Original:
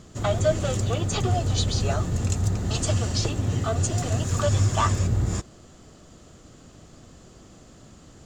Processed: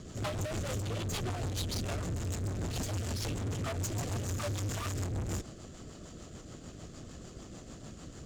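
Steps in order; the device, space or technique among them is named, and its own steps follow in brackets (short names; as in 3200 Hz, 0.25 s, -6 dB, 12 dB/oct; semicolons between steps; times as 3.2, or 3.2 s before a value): overdriven rotary cabinet (tube stage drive 37 dB, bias 0.45; rotary speaker horn 6.7 Hz); gain +5 dB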